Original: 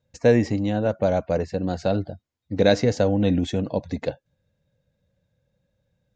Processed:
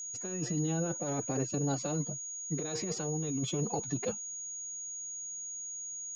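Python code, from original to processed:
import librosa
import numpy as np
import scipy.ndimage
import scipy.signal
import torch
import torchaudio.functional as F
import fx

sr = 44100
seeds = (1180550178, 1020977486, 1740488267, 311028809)

y = fx.pitch_keep_formants(x, sr, semitones=7.5)
y = fx.over_compress(y, sr, threshold_db=-25.0, ratio=-1.0)
y = y + 10.0 ** (-30.0 / 20.0) * np.sin(2.0 * np.pi * 6700.0 * np.arange(len(y)) / sr)
y = F.gain(torch.from_numpy(y), -8.5).numpy()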